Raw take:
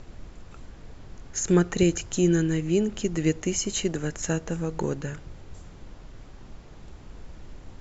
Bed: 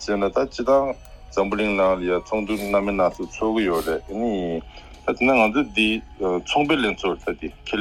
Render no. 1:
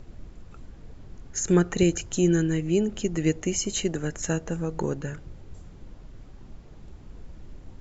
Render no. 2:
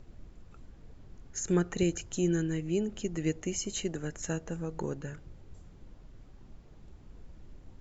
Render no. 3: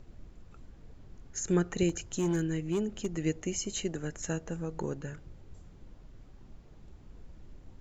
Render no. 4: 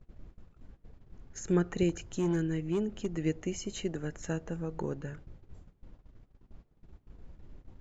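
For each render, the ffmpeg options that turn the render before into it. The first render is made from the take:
-af "afftdn=nr=6:nf=-47"
-af "volume=0.447"
-filter_complex "[0:a]asettb=1/sr,asplit=3[s0][s1][s2];[s0]atrim=end=1.894[s3];[s1]atrim=start=1.89:end=3.07,asetpts=PTS-STARTPTS,afade=t=in:d=0.004:c=qsin,afade=t=out:st=1.176:d=0.004:c=qsin,asoftclip=type=hard:threshold=0.0596[s4];[s2]atrim=start=3.066[s5];[s3][s4]acrossfade=d=0.004:c1=hsin:c2=qsin[s6];[s6][s5]acrossfade=d=0.004:c1=qsin:c2=hsin"
-af "agate=range=0.141:threshold=0.00398:ratio=16:detection=peak,lowpass=f=3000:p=1"

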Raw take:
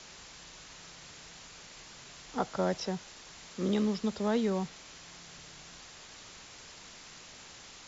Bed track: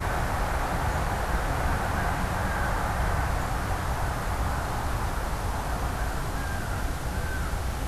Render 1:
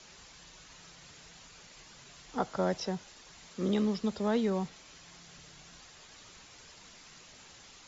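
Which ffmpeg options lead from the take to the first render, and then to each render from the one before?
-af "afftdn=nr=6:nf=-51"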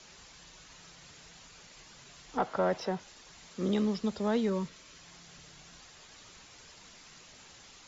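-filter_complex "[0:a]asettb=1/sr,asplit=3[s0][s1][s2];[s0]atrim=end=2.374[s3];[s1]atrim=start=2.37:end=3,asetpts=PTS-STARTPTS,afade=t=in:d=0.004:c=qsin,afade=t=out:st=0.626:d=0.004:c=qsin,asplit=2[s4][s5];[s5]highpass=f=720:p=1,volume=5.62,asoftclip=type=tanh:threshold=0.141[s6];[s4][s6]amix=inputs=2:normalize=0,lowpass=f=1100:p=1,volume=0.501[s7];[s2]atrim=start=2.996[s8];[s3][s7]acrossfade=d=0.004:c1=hsin:c2=qsin[s9];[s9][s8]acrossfade=d=0.004:c1=qsin:c2=hsin,asettb=1/sr,asplit=3[s10][s11][s12];[s10]atrim=end=4.494[s13];[s11]atrim=start=4.49:end=4.99,asetpts=PTS-STARTPTS,afade=t=in:d=0.004:c=qsin,afade=t=out:st=0.496:d=0.004:c=qsin,asuperstop=centerf=780:order=4:qfactor=3.9[s14];[s12]atrim=start=4.986[s15];[s13][s14]acrossfade=d=0.004:c1=hsin:c2=qsin[s16];[s16][s15]acrossfade=d=0.004:c1=qsin:c2=hsin"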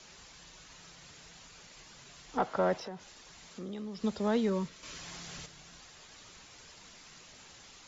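-filter_complex "[0:a]asettb=1/sr,asplit=3[s0][s1][s2];[s0]atrim=end=2.744[s3];[s1]atrim=start=2.74:end=4.04,asetpts=PTS-STARTPTS,afade=t=in:d=0.004:c=qsin,afade=t=out:st=1.296:d=0.004:c=qsin,acompressor=threshold=0.00891:ratio=3:attack=3.2:release=140:knee=1:detection=peak[s4];[s2]atrim=start=4.036[s5];[s3][s4]acrossfade=d=0.004:c1=hsin:c2=qsin[s6];[s6][s5]acrossfade=d=0.004:c1=qsin:c2=hsin,asplit=3[s7][s8][s9];[s7]atrim=end=4.832[s10];[s8]atrim=start=4.828:end=5.462,asetpts=PTS-STARTPTS,volume=2.51[s11];[s9]atrim=start=5.458[s12];[s10][s11]acrossfade=d=0.004:c1=hsin:c2=hsin[s13];[s13][s12]acrossfade=d=0.004:c1=hsin:c2=hsin"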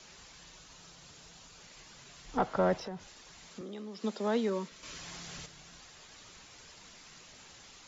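-filter_complex "[0:a]asettb=1/sr,asplit=3[s0][s1][s2];[s0]atrim=end=0.584[s3];[s1]atrim=start=0.58:end=1.61,asetpts=PTS-STARTPTS,afade=t=in:d=0.004:c=qsin,afade=t=out:st=1.026:d=0.004:c=qsin,equalizer=f=2000:t=o:w=0.77:g=-4.5[s4];[s2]atrim=start=1.606[s5];[s3][s4]acrossfade=d=0.004:c1=hsin:c2=qsin[s6];[s6][s5]acrossfade=d=0.004:c1=qsin:c2=hsin,asettb=1/sr,asplit=3[s7][s8][s9];[s7]atrim=end=2.244[s10];[s8]atrim=start=2.24:end=3.07,asetpts=PTS-STARTPTS,afade=t=in:d=0.004:c=qsin,afade=t=out:st=0.826:d=0.004:c=qsin,lowshelf=f=140:g=9.5[s11];[s9]atrim=start=3.066[s12];[s10][s11]acrossfade=d=0.004:c1=hsin:c2=qsin[s13];[s13][s12]acrossfade=d=0.004:c1=qsin:c2=hsin,asettb=1/sr,asplit=3[s14][s15][s16];[s14]atrim=end=3.614[s17];[s15]atrim=start=3.61:end=4.72,asetpts=PTS-STARTPTS,afade=t=in:d=0.004:c=qsin,afade=t=out:st=1.106:d=0.004:c=qsin,highpass=f=220:w=0.5412,highpass=f=220:w=1.3066[s18];[s16]atrim=start=4.716[s19];[s17][s18]acrossfade=d=0.004:c1=hsin:c2=qsin[s20];[s20][s19]acrossfade=d=0.004:c1=qsin:c2=hsin"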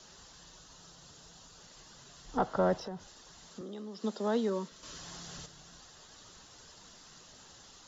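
-af "equalizer=f=2300:w=3.5:g=-12.5"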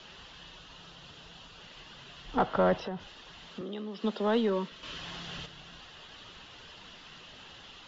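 -filter_complex "[0:a]lowpass=f=2900:t=q:w=3,asplit=2[s0][s1];[s1]asoftclip=type=tanh:threshold=0.0355,volume=0.668[s2];[s0][s2]amix=inputs=2:normalize=0"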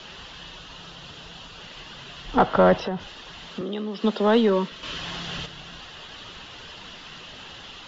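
-af "volume=2.66"

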